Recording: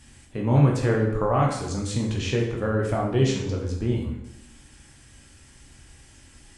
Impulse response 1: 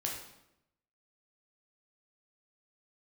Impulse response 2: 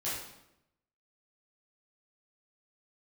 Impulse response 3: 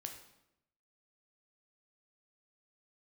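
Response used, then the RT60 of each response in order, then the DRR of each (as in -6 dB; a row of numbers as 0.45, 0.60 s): 1; 0.85, 0.85, 0.85 s; -2.0, -10.5, 3.5 dB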